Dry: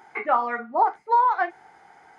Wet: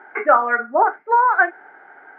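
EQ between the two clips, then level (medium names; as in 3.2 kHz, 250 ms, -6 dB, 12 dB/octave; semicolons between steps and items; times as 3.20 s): cabinet simulation 220–2600 Hz, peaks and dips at 280 Hz +9 dB, 400 Hz +8 dB, 600 Hz +10 dB, 1.6 kHz +9 dB; peaking EQ 1.4 kHz +8 dB 0.56 oct; 0.0 dB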